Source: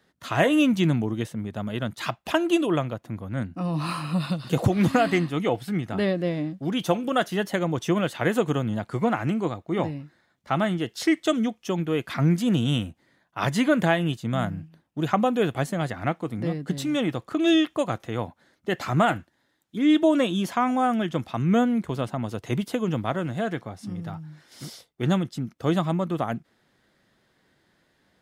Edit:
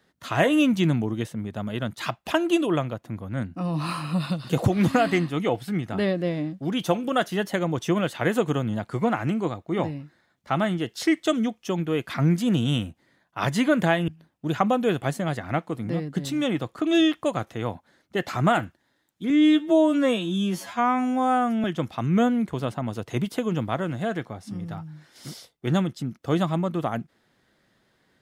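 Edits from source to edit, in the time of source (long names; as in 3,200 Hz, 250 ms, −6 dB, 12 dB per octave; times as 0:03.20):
0:14.08–0:14.61: remove
0:19.83–0:21.00: time-stretch 2×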